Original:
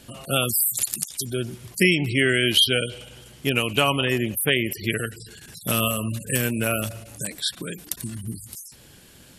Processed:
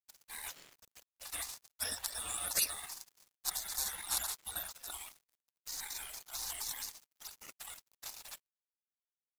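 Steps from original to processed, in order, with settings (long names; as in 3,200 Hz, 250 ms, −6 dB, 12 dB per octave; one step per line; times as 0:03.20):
compressor on every frequency bin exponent 0.4
downward expander −17 dBFS
gate on every frequency bin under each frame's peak −25 dB weak
dead-zone distortion −44.5 dBFS
level −2.5 dB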